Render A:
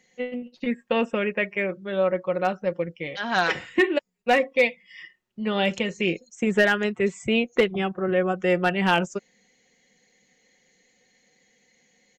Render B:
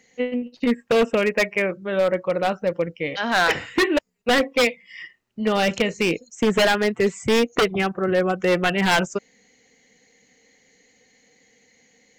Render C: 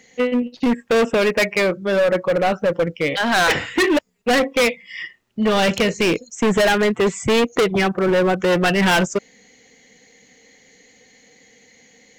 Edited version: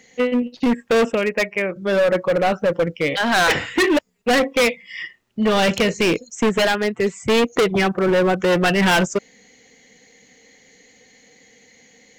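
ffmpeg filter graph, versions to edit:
-filter_complex "[1:a]asplit=2[a][b];[2:a]asplit=3[c][d][e];[c]atrim=end=1.122[f];[a]atrim=start=1.118:end=1.762[g];[d]atrim=start=1.758:end=6.492[h];[b]atrim=start=6.488:end=7.292[i];[e]atrim=start=7.288[j];[f][g]acrossfade=d=0.004:c1=hsin:c2=hsin[k];[k][h]acrossfade=d=0.004:c1=hsin:c2=hsin[l];[l][i]acrossfade=d=0.004:c1=hsin:c2=hsin[m];[m][j]acrossfade=d=0.004:c1=hsin:c2=hsin"

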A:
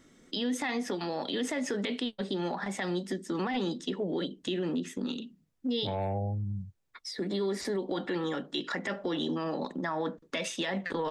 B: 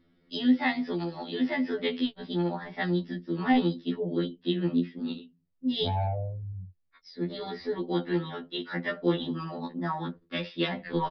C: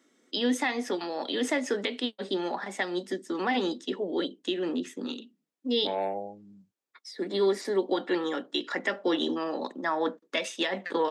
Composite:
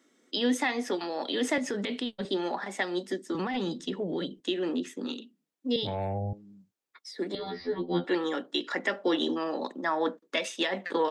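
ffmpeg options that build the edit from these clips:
-filter_complex "[0:a]asplit=3[a][b][c];[2:a]asplit=5[d][e][f][g][h];[d]atrim=end=1.582[i];[a]atrim=start=1.578:end=2.252[j];[e]atrim=start=2.248:end=3.352[k];[b]atrim=start=3.348:end=4.402[l];[f]atrim=start=4.398:end=5.762[m];[c]atrim=start=5.758:end=6.332[n];[g]atrim=start=6.328:end=7.352[o];[1:a]atrim=start=7.348:end=8.042[p];[h]atrim=start=8.038[q];[i][j]acrossfade=d=0.004:c1=hsin:c2=hsin[r];[r][k]acrossfade=d=0.004:c1=hsin:c2=hsin[s];[s][l]acrossfade=d=0.004:c1=hsin:c2=hsin[t];[t][m]acrossfade=d=0.004:c1=hsin:c2=hsin[u];[u][n]acrossfade=d=0.004:c1=hsin:c2=hsin[v];[v][o]acrossfade=d=0.004:c1=hsin:c2=hsin[w];[w][p]acrossfade=d=0.004:c1=hsin:c2=hsin[x];[x][q]acrossfade=d=0.004:c1=hsin:c2=hsin"

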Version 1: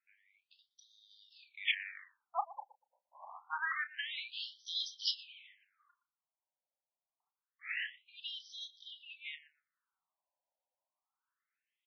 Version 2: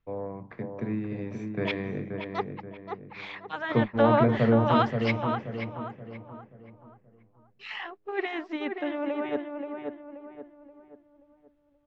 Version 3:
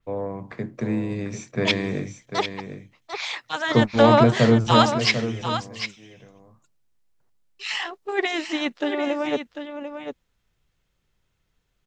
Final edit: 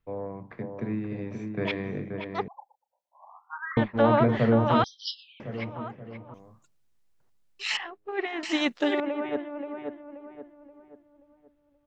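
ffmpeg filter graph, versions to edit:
-filter_complex "[0:a]asplit=2[a][b];[2:a]asplit=2[c][d];[1:a]asplit=5[e][f][g][h][i];[e]atrim=end=2.482[j];[a]atrim=start=2.478:end=3.772[k];[f]atrim=start=3.768:end=4.842[l];[b]atrim=start=4.838:end=5.402[m];[g]atrim=start=5.398:end=6.342[n];[c]atrim=start=6.338:end=7.772[o];[h]atrim=start=7.768:end=8.432[p];[d]atrim=start=8.428:end=9.002[q];[i]atrim=start=8.998[r];[j][k]acrossfade=d=0.004:c1=hsin:c2=hsin[s];[s][l]acrossfade=d=0.004:c1=hsin:c2=hsin[t];[t][m]acrossfade=d=0.004:c1=hsin:c2=hsin[u];[u][n]acrossfade=d=0.004:c1=hsin:c2=hsin[v];[v][o]acrossfade=d=0.004:c1=hsin:c2=hsin[w];[w][p]acrossfade=d=0.004:c1=hsin:c2=hsin[x];[x][q]acrossfade=d=0.004:c1=hsin:c2=hsin[y];[y][r]acrossfade=d=0.004:c1=hsin:c2=hsin"

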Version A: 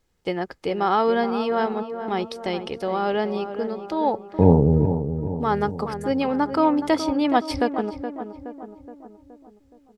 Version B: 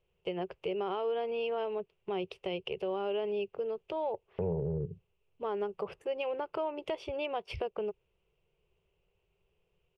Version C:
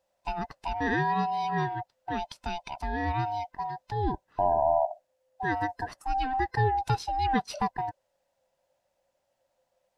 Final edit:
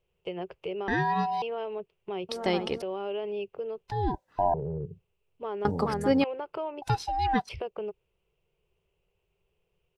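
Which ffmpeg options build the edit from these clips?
-filter_complex "[2:a]asplit=3[a][b][c];[0:a]asplit=2[d][e];[1:a]asplit=6[f][g][h][i][j][k];[f]atrim=end=0.882[l];[a]atrim=start=0.878:end=1.422[m];[g]atrim=start=1.418:end=2.292[n];[d]atrim=start=2.288:end=2.822[o];[h]atrim=start=2.818:end=3.882[p];[b]atrim=start=3.878:end=4.542[q];[i]atrim=start=4.538:end=5.652[r];[e]atrim=start=5.648:end=6.242[s];[j]atrim=start=6.238:end=6.822[t];[c]atrim=start=6.818:end=7.492[u];[k]atrim=start=7.488[v];[l][m]acrossfade=d=0.004:c1=hsin:c2=hsin[w];[w][n]acrossfade=d=0.004:c1=hsin:c2=hsin[x];[x][o]acrossfade=d=0.004:c1=hsin:c2=hsin[y];[y][p]acrossfade=d=0.004:c1=hsin:c2=hsin[z];[z][q]acrossfade=d=0.004:c1=hsin:c2=hsin[aa];[aa][r]acrossfade=d=0.004:c1=hsin:c2=hsin[ab];[ab][s]acrossfade=d=0.004:c1=hsin:c2=hsin[ac];[ac][t]acrossfade=d=0.004:c1=hsin:c2=hsin[ad];[ad][u]acrossfade=d=0.004:c1=hsin:c2=hsin[ae];[ae][v]acrossfade=d=0.004:c1=hsin:c2=hsin"

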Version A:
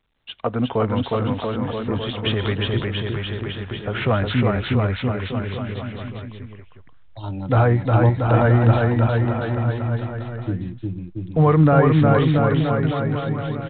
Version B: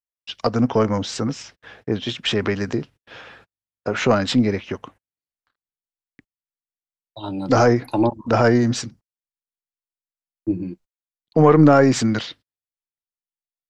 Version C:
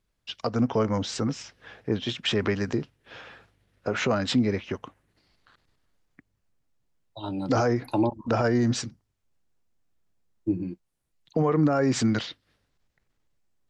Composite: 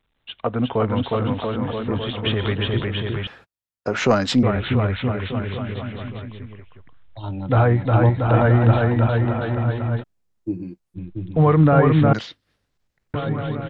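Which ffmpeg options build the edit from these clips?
-filter_complex "[2:a]asplit=2[a][b];[0:a]asplit=4[c][d][e][f];[c]atrim=end=3.272[g];[1:a]atrim=start=3.268:end=4.432[h];[d]atrim=start=4.428:end=10.04[i];[a]atrim=start=10:end=10.98[j];[e]atrim=start=10.94:end=12.132[k];[b]atrim=start=12.128:end=13.142[l];[f]atrim=start=13.138[m];[g][h]acrossfade=d=0.004:c1=hsin:c2=hsin[n];[n][i]acrossfade=d=0.004:c1=hsin:c2=hsin[o];[o][j]acrossfade=d=0.04:c1=tri:c2=tri[p];[p][k]acrossfade=d=0.04:c1=tri:c2=tri[q];[q][l]acrossfade=d=0.004:c1=hsin:c2=hsin[r];[r][m]acrossfade=d=0.004:c1=hsin:c2=hsin"

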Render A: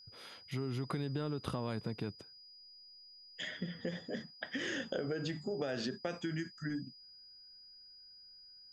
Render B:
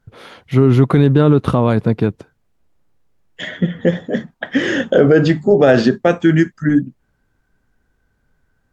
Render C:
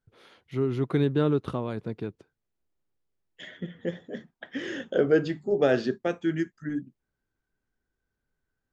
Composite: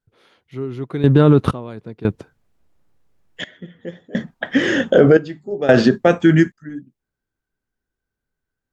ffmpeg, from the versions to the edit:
-filter_complex "[1:a]asplit=4[a][b][c][d];[2:a]asplit=5[e][f][g][h][i];[e]atrim=end=1.042[j];[a]atrim=start=1.038:end=1.512[k];[f]atrim=start=1.508:end=2.052[l];[b]atrim=start=2.048:end=3.442[m];[g]atrim=start=3.438:end=4.152[n];[c]atrim=start=4.148:end=5.172[o];[h]atrim=start=5.168:end=5.692[p];[d]atrim=start=5.688:end=6.522[q];[i]atrim=start=6.518[r];[j][k]acrossfade=d=0.004:c1=hsin:c2=hsin[s];[s][l]acrossfade=d=0.004:c1=hsin:c2=hsin[t];[t][m]acrossfade=d=0.004:c1=hsin:c2=hsin[u];[u][n]acrossfade=d=0.004:c1=hsin:c2=hsin[v];[v][o]acrossfade=d=0.004:c1=hsin:c2=hsin[w];[w][p]acrossfade=d=0.004:c1=hsin:c2=hsin[x];[x][q]acrossfade=d=0.004:c1=hsin:c2=hsin[y];[y][r]acrossfade=d=0.004:c1=hsin:c2=hsin"

